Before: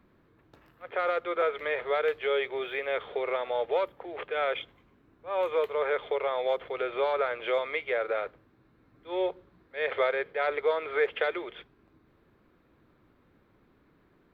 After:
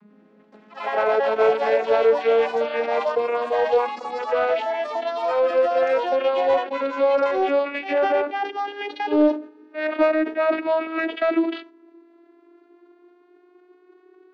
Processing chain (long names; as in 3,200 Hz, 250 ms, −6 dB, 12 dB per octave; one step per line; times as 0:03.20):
vocoder with a gliding carrier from G#3, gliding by +10 semitones
delay with pitch and tempo change per echo 95 ms, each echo +4 semitones, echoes 3, each echo −6 dB
in parallel at −3.5 dB: soft clipping −25 dBFS, distortion −13 dB
on the sum: level that may fall only so fast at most 140 dB per second
level +5.5 dB